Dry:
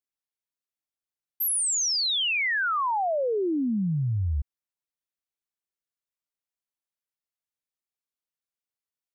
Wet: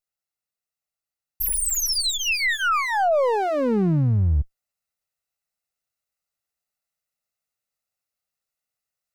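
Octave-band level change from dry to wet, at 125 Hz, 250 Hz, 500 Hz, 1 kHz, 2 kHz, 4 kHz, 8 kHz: +6.5, +3.0, +6.5, +5.0, +3.0, +0.5, +2.0 dB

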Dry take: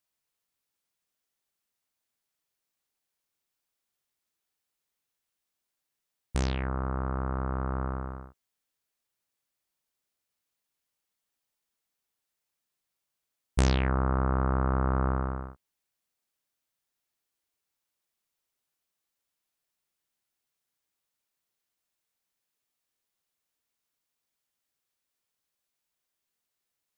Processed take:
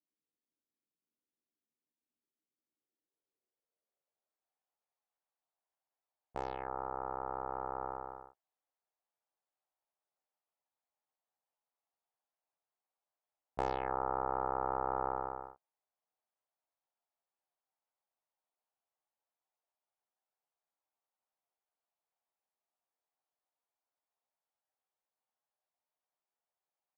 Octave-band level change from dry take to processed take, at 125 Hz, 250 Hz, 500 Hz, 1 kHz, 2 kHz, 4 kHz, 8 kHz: -22.5 dB, -16.0 dB, -4.5 dB, -0.5 dB, -11.0 dB, under -15 dB, under -20 dB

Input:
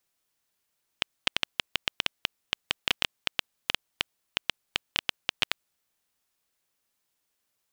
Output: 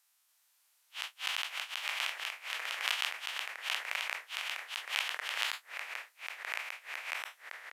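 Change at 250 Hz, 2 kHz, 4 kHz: under -25 dB, -0.5 dB, -5.5 dB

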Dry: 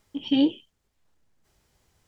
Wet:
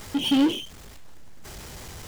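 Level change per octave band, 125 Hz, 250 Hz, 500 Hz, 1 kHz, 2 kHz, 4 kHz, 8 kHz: +9.0 dB, +1.0 dB, +1.0 dB, +9.5 dB, +8.0 dB, +6.0 dB, n/a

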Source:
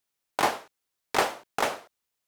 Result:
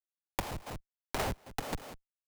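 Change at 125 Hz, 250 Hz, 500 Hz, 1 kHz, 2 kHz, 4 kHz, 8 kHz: +7.0, -4.0, -9.5, -12.0, -11.5, -9.5, -8.0 dB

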